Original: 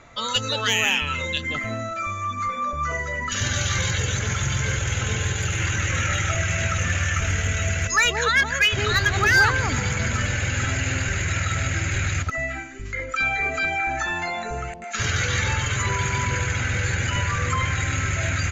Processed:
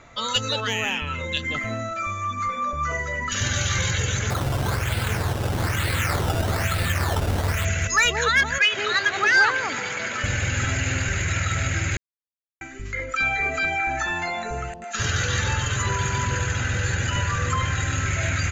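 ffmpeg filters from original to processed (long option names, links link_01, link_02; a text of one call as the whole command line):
ffmpeg -i in.wav -filter_complex "[0:a]asettb=1/sr,asplit=3[link_01][link_02][link_03];[link_01]atrim=end=0.604[link_04];[link_02]atrim=start=0.6:end=1.32,asetpts=PTS-STARTPTS,afade=type=in:duration=0.004:curve=qsin,afade=type=out:start_time=0.716:duration=0.004:curve=qsin,highshelf=frequency=2100:gain=-9[link_05];[link_03]atrim=start=1.316[link_06];[link_04][link_05]acrossfade=duration=0.004:curve1=hsin:curve2=qsin[link_07];[link_07][link_06]acrossfade=duration=0.004:curve1=qsin:curve2=hsin,asettb=1/sr,asplit=3[link_08][link_09][link_10];[link_08]atrim=end=4.304[link_11];[link_09]atrim=start=4.3:end=7.65,asetpts=PTS-STARTPTS,afade=type=in:duration=0.004:curve=qsin,afade=type=out:start_time=3.346:duration=0.004:curve=qsin,acrusher=samples=14:mix=1:aa=0.000001:lfo=1:lforange=14:lforate=1.1[link_12];[link_10]atrim=start=7.646[link_13];[link_11][link_12]acrossfade=duration=0.004:curve1=hsin:curve2=qsin[link_14];[link_14][link_13]acrossfade=duration=0.004:curve1=qsin:curve2=hsin,asettb=1/sr,asplit=3[link_15][link_16][link_17];[link_15]atrim=end=8.584[link_18];[link_16]atrim=start=8.58:end=10.24,asetpts=PTS-STARTPTS,afade=type=in:duration=0.004:curve=qsin,afade=type=out:start_time=1.656:duration=0.004:curve=qsin,highpass=360,lowpass=5600[link_19];[link_17]atrim=start=10.236[link_20];[link_18][link_19]acrossfade=duration=0.004:curve1=hsin:curve2=qsin[link_21];[link_21][link_20]acrossfade=duration=0.004:curve1=qsin:curve2=hsin,asettb=1/sr,asplit=3[link_22][link_23][link_24];[link_22]atrim=end=14.664[link_25];[link_23]atrim=start=14.66:end=18.06,asetpts=PTS-STARTPTS,afade=type=in:duration=0.004:curve=qsin,afade=type=out:start_time=3.396:duration=0.004:curve=qsin,bandreject=frequency=2200:width=6.4[link_26];[link_24]atrim=start=18.056[link_27];[link_25][link_26]acrossfade=duration=0.004:curve1=hsin:curve2=qsin[link_28];[link_28][link_27]acrossfade=duration=0.004:curve1=qsin:curve2=hsin,asplit=3[link_29][link_30][link_31];[link_29]atrim=end=11.97,asetpts=PTS-STARTPTS,afade=type=out:start_time=11.966:duration=0.004:curve=hsin[link_32];[link_30]atrim=start=11.97:end=12.61,asetpts=PTS-STARTPTS,volume=0[link_33];[link_31]atrim=start=12.61,asetpts=PTS-STARTPTS,afade=type=in:duration=0.004:curve=hsin[link_34];[link_32][link_33][link_34]concat=n=3:v=0:a=1" out.wav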